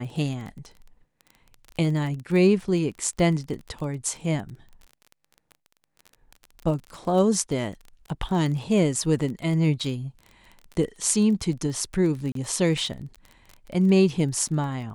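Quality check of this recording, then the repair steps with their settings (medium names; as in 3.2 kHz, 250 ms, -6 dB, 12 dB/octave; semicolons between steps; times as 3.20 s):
crackle 25 per s -32 dBFS
12.32–12.35 s: dropout 33 ms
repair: de-click; interpolate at 12.32 s, 33 ms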